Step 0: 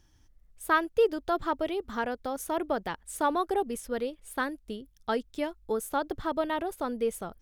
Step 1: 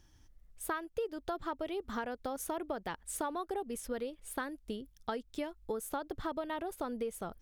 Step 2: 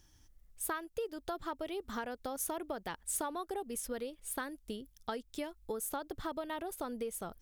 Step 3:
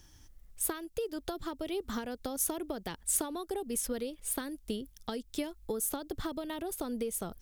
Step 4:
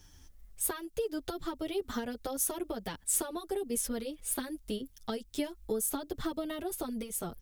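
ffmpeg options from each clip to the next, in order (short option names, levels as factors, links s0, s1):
-af "acompressor=threshold=0.02:ratio=6"
-af "highshelf=f=4700:g=8.5,volume=0.794"
-filter_complex "[0:a]acrossover=split=430|3000[s0][s1][s2];[s1]acompressor=threshold=0.00398:ratio=6[s3];[s0][s3][s2]amix=inputs=3:normalize=0,volume=2.11"
-filter_complex "[0:a]asplit=2[s0][s1];[s1]adelay=7.4,afreqshift=-1.7[s2];[s0][s2]amix=inputs=2:normalize=1,volume=1.5"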